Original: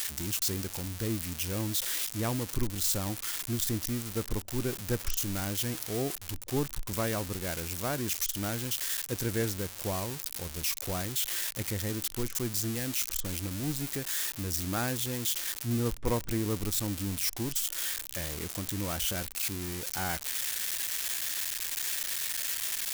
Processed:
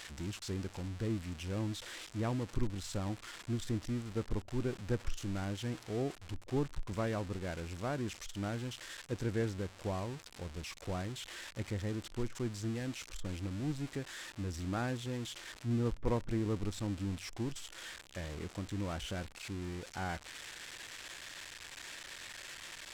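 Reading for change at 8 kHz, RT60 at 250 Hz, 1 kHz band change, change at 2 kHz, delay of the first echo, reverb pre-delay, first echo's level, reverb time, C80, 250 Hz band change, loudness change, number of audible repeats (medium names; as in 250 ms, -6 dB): -17.0 dB, no reverb, -4.5 dB, -6.5 dB, no echo, no reverb, no echo, no reverb, no reverb, -3.0 dB, -8.0 dB, no echo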